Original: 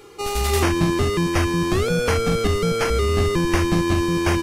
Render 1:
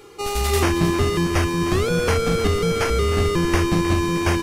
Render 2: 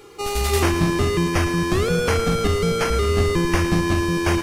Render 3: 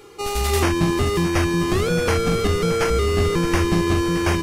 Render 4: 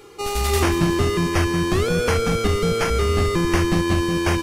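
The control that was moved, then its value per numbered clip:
feedback echo at a low word length, delay time: 311, 110, 621, 185 milliseconds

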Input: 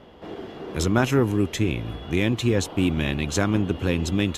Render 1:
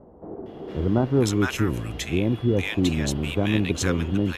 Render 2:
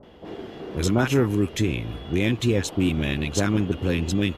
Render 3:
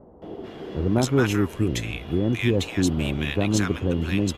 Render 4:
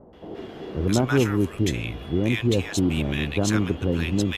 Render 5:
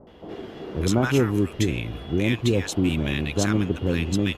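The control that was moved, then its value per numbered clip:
multiband delay without the direct sound, delay time: 460, 30, 220, 130, 70 milliseconds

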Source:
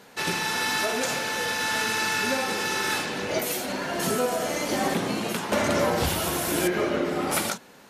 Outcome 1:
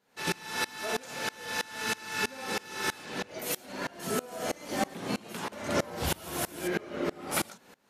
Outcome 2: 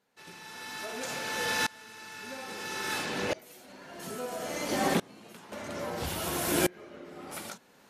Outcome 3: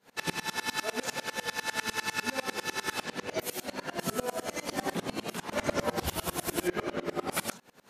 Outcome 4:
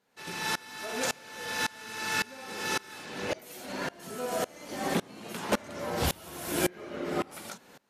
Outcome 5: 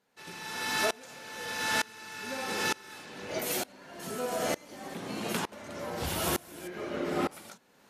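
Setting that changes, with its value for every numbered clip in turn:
tremolo with a ramp in dB, speed: 3.1, 0.6, 10, 1.8, 1.1 Hertz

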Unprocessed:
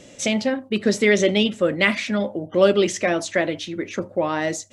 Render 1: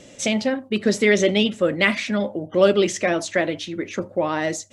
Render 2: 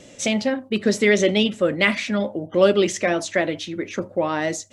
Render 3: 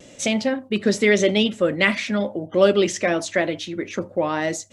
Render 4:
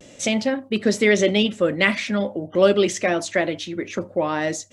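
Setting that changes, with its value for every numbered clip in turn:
pitch vibrato, speed: 16, 4.5, 0.91, 0.38 Hertz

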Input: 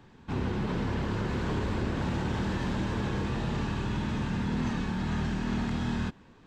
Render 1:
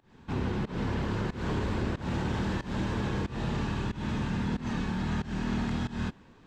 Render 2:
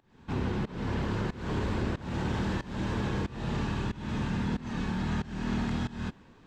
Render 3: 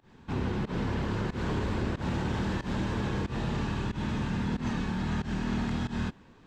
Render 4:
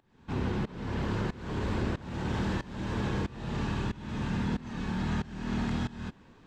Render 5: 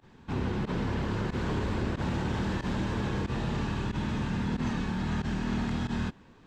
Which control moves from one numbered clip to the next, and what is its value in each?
fake sidechain pumping, release: 205, 340, 130, 518, 62 milliseconds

